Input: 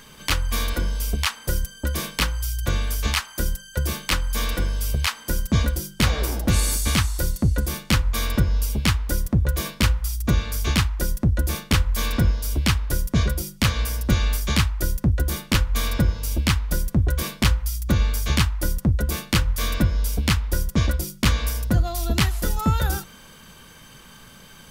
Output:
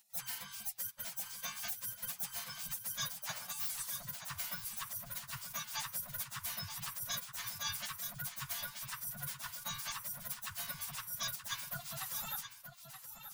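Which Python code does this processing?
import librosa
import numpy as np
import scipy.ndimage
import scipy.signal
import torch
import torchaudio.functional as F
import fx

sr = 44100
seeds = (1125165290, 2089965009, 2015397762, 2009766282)

y = fx.tracing_dist(x, sr, depth_ms=0.028)
y = scipy.signal.sosfilt(scipy.signal.ellip(3, 1.0, 70, [110.0, 1000.0], 'bandstop', fs=sr, output='sos'), y)
y = fx.noise_reduce_blind(y, sr, reduce_db=17)
y = fx.spec_gate(y, sr, threshold_db=-25, keep='weak')
y = fx.high_shelf(y, sr, hz=12000.0, db=3.5)
y = fx.over_compress(y, sr, threshold_db=-42.0, ratio=-1.0)
y = fx.stretch_vocoder_free(y, sr, factor=0.54)
y = y + 10.0 ** (-9.5 / 20.0) * np.pad(y, (int(927 * sr / 1000.0), 0))[:len(y)]
y = y * 10.0 ** (6.5 / 20.0)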